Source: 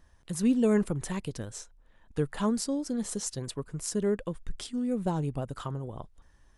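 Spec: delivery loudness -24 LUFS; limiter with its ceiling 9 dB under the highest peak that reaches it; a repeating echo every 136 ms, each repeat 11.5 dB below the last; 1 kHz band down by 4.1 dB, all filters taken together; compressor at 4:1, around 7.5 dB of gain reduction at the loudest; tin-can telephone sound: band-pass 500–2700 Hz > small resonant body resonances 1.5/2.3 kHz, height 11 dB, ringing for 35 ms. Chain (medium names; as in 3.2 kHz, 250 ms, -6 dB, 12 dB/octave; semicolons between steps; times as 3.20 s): peaking EQ 1 kHz -4.5 dB; compression 4:1, threshold -29 dBFS; peak limiter -27 dBFS; band-pass 500–2700 Hz; feedback delay 136 ms, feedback 27%, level -11.5 dB; small resonant body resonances 1.5/2.3 kHz, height 11 dB, ringing for 35 ms; trim +22 dB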